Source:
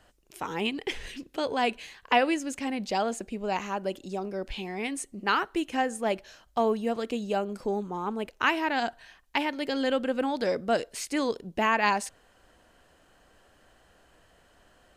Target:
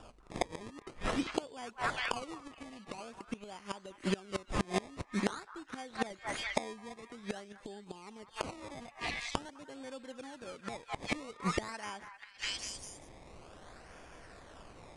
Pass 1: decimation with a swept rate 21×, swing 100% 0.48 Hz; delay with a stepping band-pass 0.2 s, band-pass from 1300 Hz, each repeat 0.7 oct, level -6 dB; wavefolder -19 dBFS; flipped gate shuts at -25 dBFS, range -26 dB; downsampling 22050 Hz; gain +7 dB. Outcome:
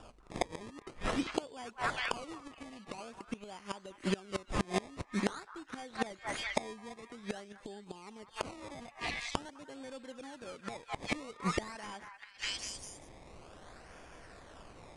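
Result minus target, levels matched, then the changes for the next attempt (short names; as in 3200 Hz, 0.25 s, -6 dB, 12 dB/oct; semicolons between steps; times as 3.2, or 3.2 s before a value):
wavefolder: distortion +18 dB
change: wavefolder -12 dBFS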